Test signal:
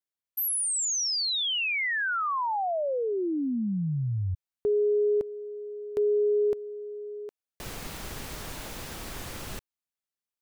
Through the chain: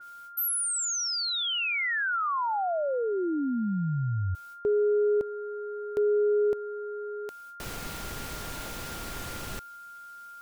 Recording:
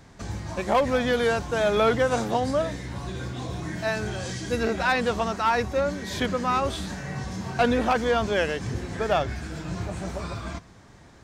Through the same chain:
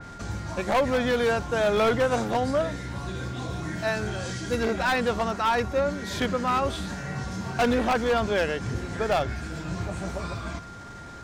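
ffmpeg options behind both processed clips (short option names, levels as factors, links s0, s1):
-af "areverse,acompressor=mode=upward:threshold=0.0224:ratio=2.5:attack=0.9:release=63:knee=2.83:detection=peak,areverse,aeval=exprs='val(0)+0.00708*sin(2*PI*1400*n/s)':c=same,aeval=exprs='0.15*(abs(mod(val(0)/0.15+3,4)-2)-1)':c=same,adynamicequalizer=threshold=0.0126:dfrequency=3300:dqfactor=0.7:tfrequency=3300:tqfactor=0.7:attack=5:release=100:ratio=0.375:range=1.5:mode=cutabove:tftype=highshelf"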